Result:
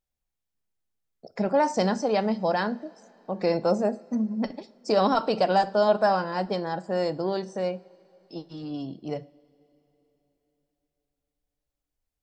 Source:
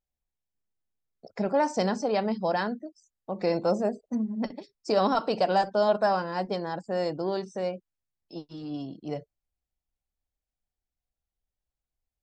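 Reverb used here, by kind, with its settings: two-slope reverb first 0.45 s, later 4 s, from -18 dB, DRR 15 dB; trim +2 dB

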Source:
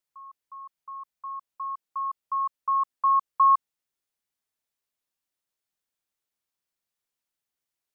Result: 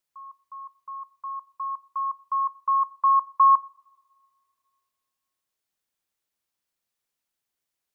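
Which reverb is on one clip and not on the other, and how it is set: two-slope reverb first 0.44 s, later 2.2 s, from -18 dB, DRR 19 dB; trim +2.5 dB

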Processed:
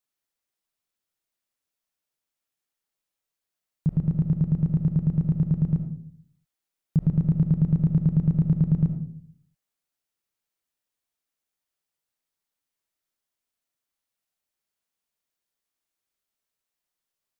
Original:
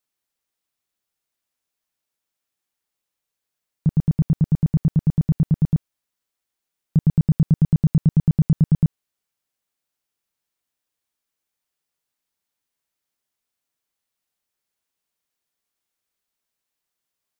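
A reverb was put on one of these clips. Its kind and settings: algorithmic reverb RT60 0.58 s, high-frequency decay 0.3×, pre-delay 30 ms, DRR 7 dB; trim -4.5 dB

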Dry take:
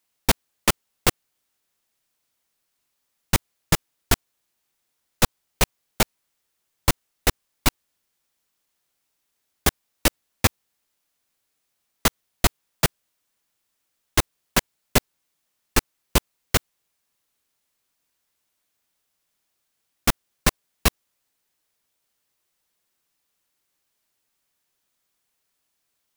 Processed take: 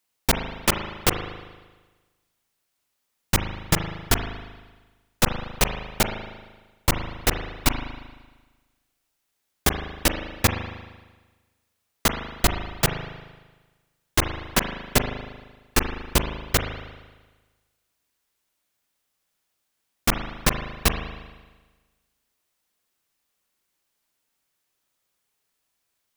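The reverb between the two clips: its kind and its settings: spring tank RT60 1.3 s, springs 38 ms, chirp 75 ms, DRR 5 dB; trim -1 dB

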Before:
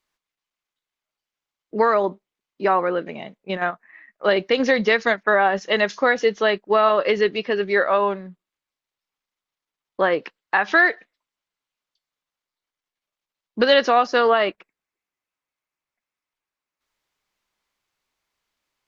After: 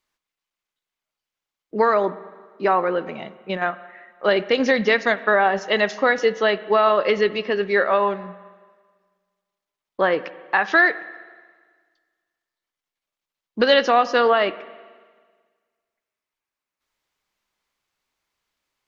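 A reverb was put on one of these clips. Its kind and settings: spring tank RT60 1.6 s, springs 38/54 ms, chirp 50 ms, DRR 15.5 dB

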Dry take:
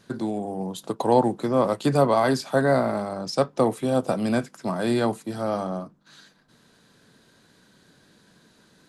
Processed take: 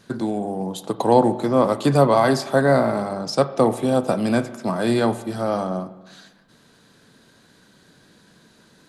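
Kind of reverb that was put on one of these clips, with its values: spring tank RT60 1.2 s, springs 35/43 ms, chirp 30 ms, DRR 13 dB; trim +3.5 dB

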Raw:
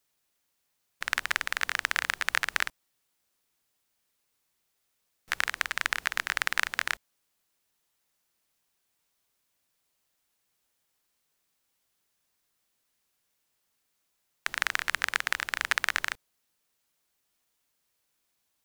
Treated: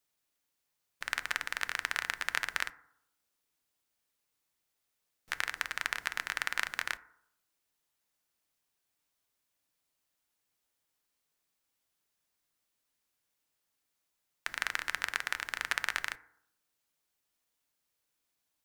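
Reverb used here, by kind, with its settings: FDN reverb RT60 0.73 s, low-frequency decay 1×, high-frequency decay 0.3×, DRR 13 dB; trim -5.5 dB

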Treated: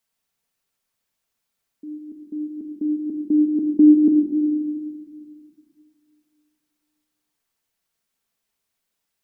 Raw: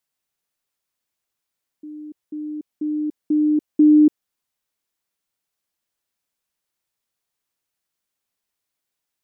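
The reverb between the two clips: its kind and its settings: simulated room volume 2400 m³, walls mixed, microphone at 1.6 m; trim +1.5 dB

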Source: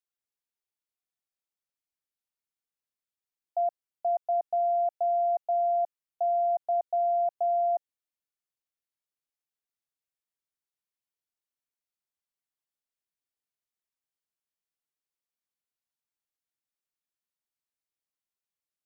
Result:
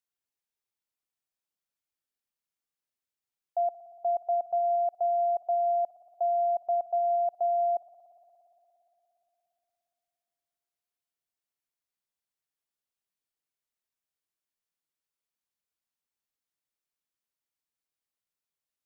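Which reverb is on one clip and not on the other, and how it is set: spring tank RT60 3.5 s, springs 58 ms, chirp 50 ms, DRR 16 dB

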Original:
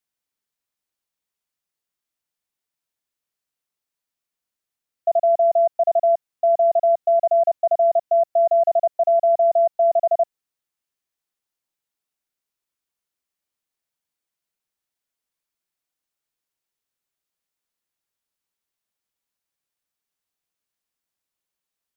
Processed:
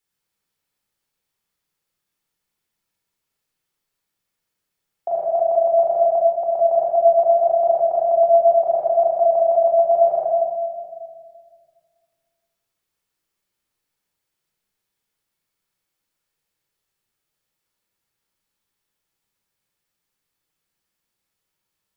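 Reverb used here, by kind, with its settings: simulated room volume 2300 m³, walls mixed, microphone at 4.2 m; trim +1 dB

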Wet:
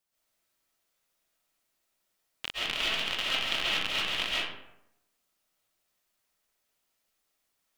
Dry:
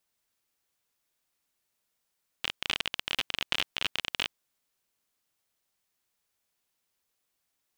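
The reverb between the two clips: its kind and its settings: algorithmic reverb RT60 0.83 s, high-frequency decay 0.55×, pre-delay 95 ms, DRR -7.5 dB; trim -4.5 dB

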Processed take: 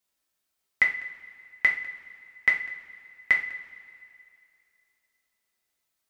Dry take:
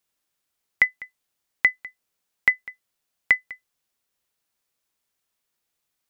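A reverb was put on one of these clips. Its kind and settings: two-slope reverb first 0.39 s, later 2.5 s, from -18 dB, DRR -1.5 dB; trim -4.5 dB

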